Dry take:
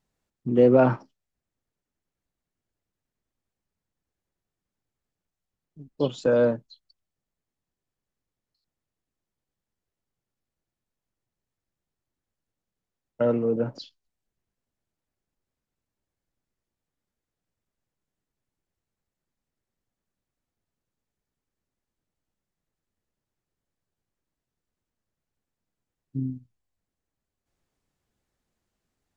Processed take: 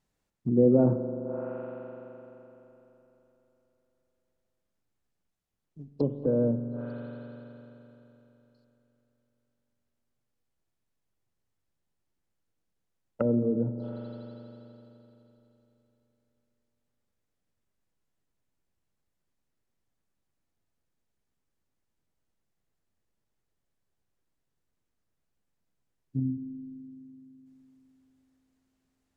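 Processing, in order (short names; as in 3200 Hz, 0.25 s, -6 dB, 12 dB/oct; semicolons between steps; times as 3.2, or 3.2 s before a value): spring tank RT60 3.5 s, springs 42 ms, chirp 45 ms, DRR 8 dB; treble ducked by the level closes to 380 Hz, closed at -25.5 dBFS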